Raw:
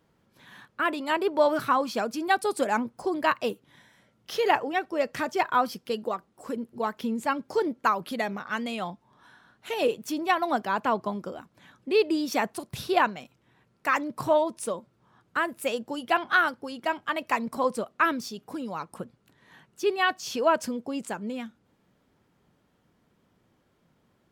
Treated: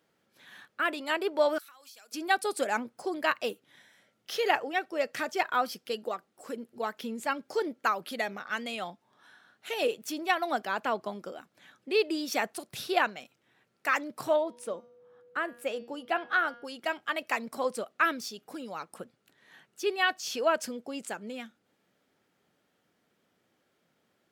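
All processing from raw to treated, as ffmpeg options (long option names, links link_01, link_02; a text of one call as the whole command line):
ffmpeg -i in.wav -filter_complex "[0:a]asettb=1/sr,asplit=3[link_01][link_02][link_03];[link_01]atrim=end=1.584[link_04];[link_02]atrim=start=1.58:end=2.12,asetpts=PTS-STARTPTS,afade=type=in:duration=0.004:curve=qsin,afade=type=out:start_time=0.536:duration=0.004:curve=qsin,aderivative,acompressor=threshold=-48dB:ratio=6:attack=3.2:release=140:knee=1:detection=peak[link_05];[link_03]atrim=start=2.116[link_06];[link_04][link_05]acrossfade=duration=0.004:curve1=hsin:curve2=qsin[link_07];[link_07][link_06]acrossfade=duration=0.004:curve1=qsin:curve2=hsin,asettb=1/sr,asplit=3[link_08][link_09][link_10];[link_08]atrim=end=14.364[link_11];[link_09]atrim=start=14.36:end=16.65,asetpts=PTS-STARTPTS,afade=type=in:duration=0.004:curve=qsin,afade=type=out:start_time=2.286:duration=0.004:curve=qsin,aeval=exprs='val(0)+0.00282*sin(2*PI*490*n/s)':channel_layout=same,highshelf=frequency=2500:gain=-11,bandreject=frequency=237.1:width_type=h:width=4,bandreject=frequency=474.2:width_type=h:width=4,bandreject=frequency=711.3:width_type=h:width=4,bandreject=frequency=948.4:width_type=h:width=4,bandreject=frequency=1185.5:width_type=h:width=4,bandreject=frequency=1422.6:width_type=h:width=4,bandreject=frequency=1659.7:width_type=h:width=4,bandreject=frequency=1896.8:width_type=h:width=4,bandreject=frequency=2133.9:width_type=h:width=4,bandreject=frequency=2371:width_type=h:width=4,bandreject=frequency=2608.1:width_type=h:width=4,bandreject=frequency=2845.2:width_type=h:width=4,bandreject=frequency=3082.3:width_type=h:width=4,bandreject=frequency=3319.4:width_type=h:width=4,bandreject=frequency=3556.5:width_type=h:width=4,bandreject=frequency=3793.6:width_type=h:width=4,bandreject=frequency=4030.7:width_type=h:width=4,bandreject=frequency=4267.8:width_type=h:width=4,bandreject=frequency=4504.9:width_type=h:width=4,bandreject=frequency=4742:width_type=h:width=4,bandreject=frequency=4979.1:width_type=h:width=4,bandreject=frequency=5216.2:width_type=h:width=4,bandreject=frequency=5453.3:width_type=h:width=4,bandreject=frequency=5690.4:width_type=h:width=4,bandreject=frequency=5927.5:width_type=h:width=4,bandreject=frequency=6164.6:width_type=h:width=4[link_12];[link_10]atrim=start=16.646[link_13];[link_11][link_12]acrossfade=duration=0.004:curve1=hsin:curve2=qsin[link_14];[link_14][link_13]acrossfade=duration=0.004:curve1=qsin:curve2=hsin,highpass=frequency=540:poles=1,equalizer=frequency=1000:width=3.6:gain=-7.5" out.wav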